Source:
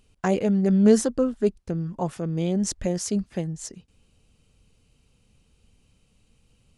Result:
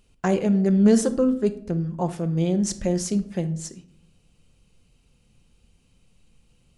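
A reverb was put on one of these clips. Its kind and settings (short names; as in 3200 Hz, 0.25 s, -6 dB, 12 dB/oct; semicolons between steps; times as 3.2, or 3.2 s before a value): shoebox room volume 1000 m³, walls furnished, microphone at 0.87 m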